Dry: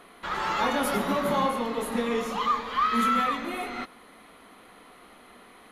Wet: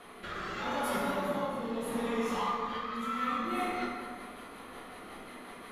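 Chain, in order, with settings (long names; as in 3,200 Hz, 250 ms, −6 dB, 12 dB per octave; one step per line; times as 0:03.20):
downward compressor 6 to 1, threshold −36 dBFS, peak gain reduction 14.5 dB
rotating-speaker cabinet horn 0.8 Hz, later 5.5 Hz, at 0:03.00
dense smooth reverb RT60 1.8 s, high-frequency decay 0.45×, DRR −4.5 dB
level +1.5 dB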